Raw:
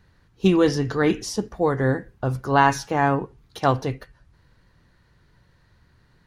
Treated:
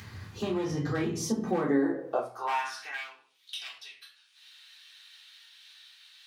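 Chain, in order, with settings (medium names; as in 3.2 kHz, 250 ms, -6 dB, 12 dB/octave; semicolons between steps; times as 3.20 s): one-sided wavefolder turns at -13.5 dBFS; Doppler pass-by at 1.88 s, 19 m/s, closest 1.9 m; in parallel at +0.5 dB: upward compressor, threshold -37 dBFS; on the sum: high-pass 46 Hz; simulated room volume 280 m³, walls furnished, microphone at 3.6 m; compression 16:1, threshold -27 dBFS, peak gain reduction 21 dB; high-pass sweep 93 Hz -> 3.1 kHz, 1.11–3.23 s; tape noise reduction on one side only encoder only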